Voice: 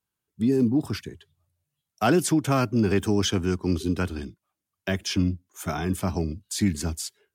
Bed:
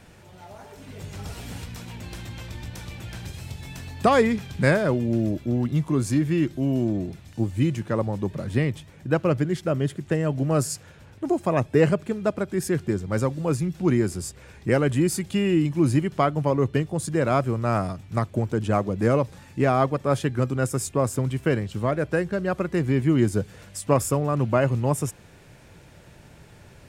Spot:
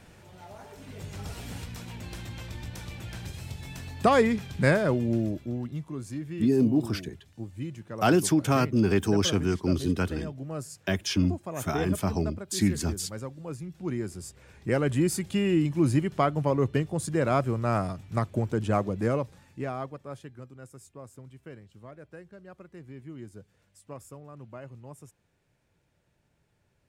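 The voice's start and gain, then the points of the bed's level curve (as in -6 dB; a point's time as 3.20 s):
6.00 s, -1.0 dB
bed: 5.12 s -2.5 dB
5.89 s -13.5 dB
13.55 s -13.5 dB
15.01 s -3 dB
18.85 s -3 dB
20.51 s -22.5 dB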